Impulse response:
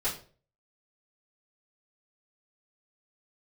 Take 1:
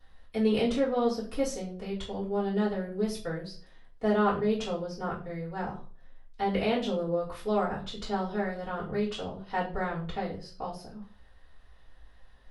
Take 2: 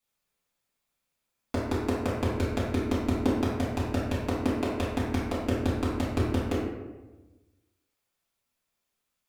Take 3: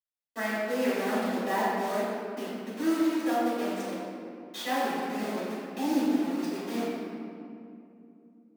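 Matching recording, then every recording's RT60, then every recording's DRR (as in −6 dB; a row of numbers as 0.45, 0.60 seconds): 1; 0.40, 1.2, 2.6 seconds; −11.0, −10.0, −11.0 decibels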